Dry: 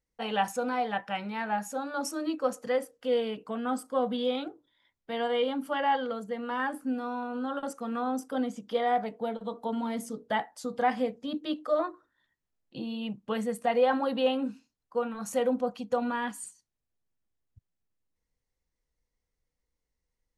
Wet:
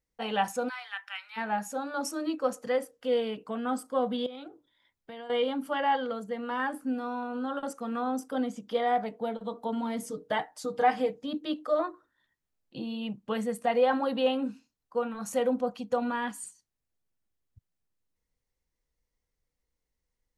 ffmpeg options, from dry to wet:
-filter_complex "[0:a]asplit=3[a][b][c];[a]afade=t=out:st=0.68:d=0.02[d];[b]highpass=f=1.3k:w=0.5412,highpass=f=1.3k:w=1.3066,afade=t=in:st=0.68:d=0.02,afade=t=out:st=1.36:d=0.02[e];[c]afade=t=in:st=1.36:d=0.02[f];[d][e][f]amix=inputs=3:normalize=0,asettb=1/sr,asplit=3[g][h][i];[g]atrim=end=4.264[j];[h]atrim=start=4.26:end=5.3,asetpts=PTS-STARTPTS,afade=t=in:d=0.004:c=qsin,afade=t=out:st=1.036:d=0.004:c=qsin,acompressor=threshold=-41dB:ratio=4:attack=3.2:release=140:knee=1:detection=peak[k];[i]atrim=start=5.296[l];[j][k]acrossfade=d=0.004:c1=hsin:c2=qsin[m];[m][l]acrossfade=d=0.004:c1=qsin:c2=hsin,asettb=1/sr,asplit=3[n][o][p];[n]atrim=end=10.024[q];[o]atrim=start=10.02:end=11.23,asetpts=PTS-STARTPTS,afade=t=in:d=0.004:c=qsin,afade=t=out:st=1.206:d=0.004:c=qsin,aecho=1:1:6.5:0.65,atrim=end_sample=53361[r];[p]atrim=start=11.226[s];[q][r]acrossfade=d=0.004:c1=hsin:c2=qsin[t];[t][s]acrossfade=d=0.004:c1=qsin:c2=hsin"

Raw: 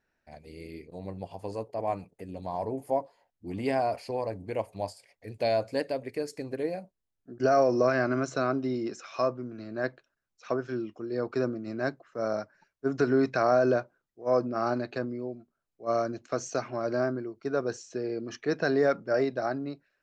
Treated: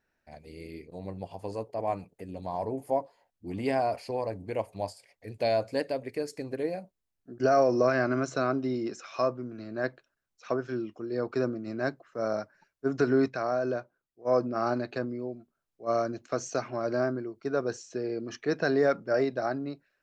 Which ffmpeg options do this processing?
-filter_complex "[0:a]asplit=3[a][b][c];[a]atrim=end=13.282[d];[b]atrim=start=13.278:end=14.252,asetpts=PTS-STARTPTS,volume=-6dB[e];[c]atrim=start=14.248[f];[d][e]acrossfade=d=0.004:c1=hsin:c2=hsin[g];[g][f]acrossfade=d=0.004:c1=hsin:c2=hsin"

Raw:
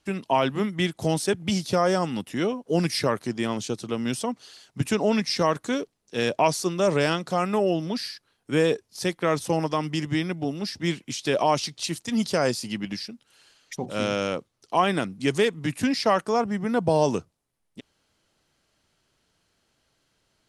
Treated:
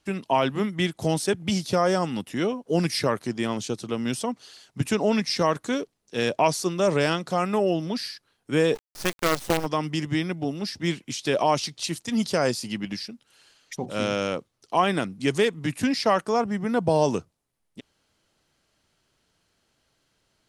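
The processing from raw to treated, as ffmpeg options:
-filter_complex "[0:a]asplit=3[a][b][c];[a]afade=t=out:st=8.74:d=0.02[d];[b]acrusher=bits=4:dc=4:mix=0:aa=0.000001,afade=t=in:st=8.74:d=0.02,afade=t=out:st=9.65:d=0.02[e];[c]afade=t=in:st=9.65:d=0.02[f];[d][e][f]amix=inputs=3:normalize=0"

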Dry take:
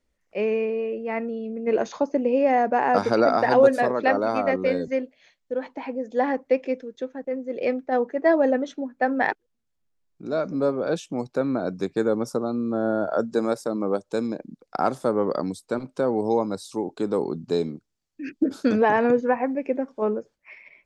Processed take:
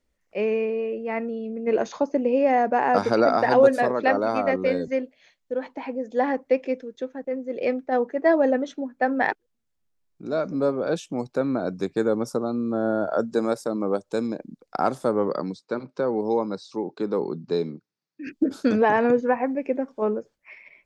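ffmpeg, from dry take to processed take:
-filter_complex "[0:a]asettb=1/sr,asplit=3[a][b][c];[a]atrim=end=15.284[d];[b]atrim=start=15.28:end=18.27,asetpts=PTS-STARTPTS,afade=t=in:d=0.004:c=qsin,afade=t=out:st=2.986:d=0.004:c=qsin,highpass=f=130:w=0.5412,highpass=f=130:w=1.3066,equalizer=f=260:t=q:w=4:g=-4,equalizer=f=690:t=q:w=4:g=-5,equalizer=f=3.1k:t=q:w=4:g=-6,lowpass=f=5.4k:w=0.5412,lowpass=f=5.4k:w=1.3066[e];[c]atrim=start=18.266[f];[d][e]acrossfade=d=0.004:c1=hsin:c2=qsin[g];[g][f]acrossfade=d=0.004:c1=qsin:c2=hsin"

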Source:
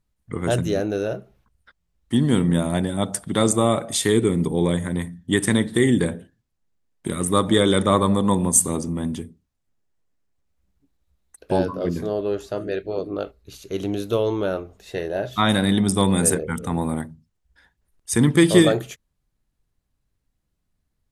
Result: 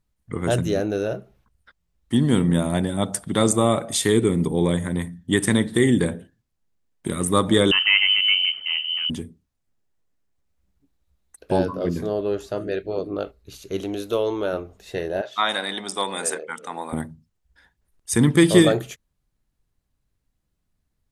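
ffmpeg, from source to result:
-filter_complex "[0:a]asettb=1/sr,asplit=3[a][b][c];[a]atrim=end=7.714[d];[b]atrim=start=7.71:end=9.1,asetpts=PTS-STARTPTS,afade=t=in:d=0.004:c=qsin,afade=t=out:st=1.386:d=0.004:c=qsin,lowpass=f=2.7k:t=q:w=0.5098,lowpass=f=2.7k:t=q:w=0.6013,lowpass=f=2.7k:t=q:w=0.9,lowpass=f=2.7k:t=q:w=2.563,afreqshift=-3200[e];[c]atrim=start=9.096[f];[d][e]acrossfade=d=0.004:c1=hsin:c2=qsin[g];[g][f]acrossfade=d=0.004:c1=qsin:c2=hsin,asettb=1/sr,asplit=3[h][i][j];[h]atrim=end=13.804[k];[i]atrim=start=13.8:end=14.53,asetpts=PTS-STARTPTS,afade=t=in:d=0.004:c=qsin,afade=t=out:st=0.726:d=0.004:c=qsin,equalizer=f=140:w=1.5:g=-15[l];[j]atrim=start=14.526[m];[k][l]acrossfade=d=0.004:c1=hsin:c2=qsin[n];[n][m]acrossfade=d=0.004:c1=qsin:c2=hsin,asettb=1/sr,asplit=3[o][p][q];[o]atrim=end=15.214[r];[p]atrim=start=15.21:end=16.93,asetpts=PTS-STARTPTS,afade=t=in:d=0.004:c=qsin,afade=t=out:st=1.716:d=0.004:c=qsin,highpass=620,lowpass=6.9k[s];[q]atrim=start=16.926[t];[r][s]acrossfade=d=0.004:c1=hsin:c2=qsin[u];[u][t]acrossfade=d=0.004:c1=qsin:c2=hsin"

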